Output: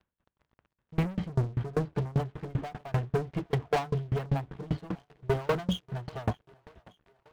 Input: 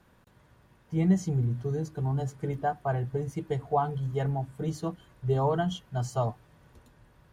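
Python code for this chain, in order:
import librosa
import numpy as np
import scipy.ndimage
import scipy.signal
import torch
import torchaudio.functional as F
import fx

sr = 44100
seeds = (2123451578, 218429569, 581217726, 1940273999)

p1 = scipy.signal.sosfilt(scipy.signal.butter(8, 3600.0, 'lowpass', fs=sr, output='sos'), x)
p2 = fx.peak_eq(p1, sr, hz=64.0, db=11.5, octaves=0.25)
p3 = fx.leveller(p2, sr, passes=5)
p4 = p3 + fx.echo_thinned(p3, sr, ms=597, feedback_pct=61, hz=230.0, wet_db=-23.0, dry=0)
p5 = fx.tremolo_decay(p4, sr, direction='decaying', hz=5.1, depth_db=29)
y = p5 * 10.0 ** (-4.5 / 20.0)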